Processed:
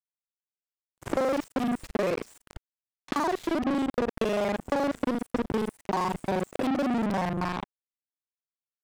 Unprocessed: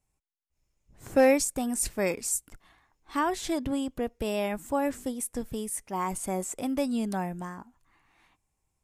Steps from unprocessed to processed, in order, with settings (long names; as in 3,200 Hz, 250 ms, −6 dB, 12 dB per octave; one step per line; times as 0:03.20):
reversed piece by piece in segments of 39 ms
leveller curve on the samples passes 5
soft clipping −19.5 dBFS, distortion −13 dB
low-shelf EQ 160 Hz −5 dB
downward compressor 2 to 1, threshold −27 dBFS, peak gain reduction 4 dB
low-pass filter 1,900 Hz 6 dB per octave
power curve on the samples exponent 3
level +8 dB